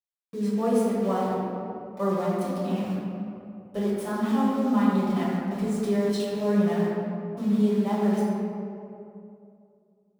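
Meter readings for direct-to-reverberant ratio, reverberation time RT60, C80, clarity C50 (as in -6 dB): -9.0 dB, 2.6 s, -0.5 dB, -2.0 dB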